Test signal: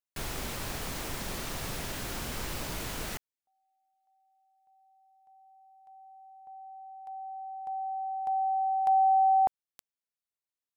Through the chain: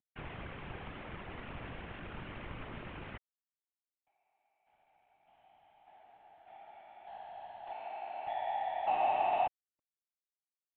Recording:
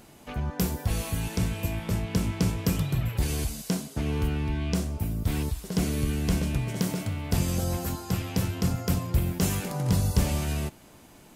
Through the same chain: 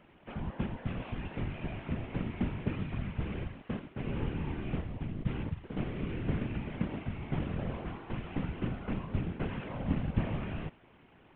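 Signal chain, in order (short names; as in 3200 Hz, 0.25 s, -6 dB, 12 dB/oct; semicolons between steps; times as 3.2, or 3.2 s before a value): CVSD 16 kbps; whisperiser; gain -7 dB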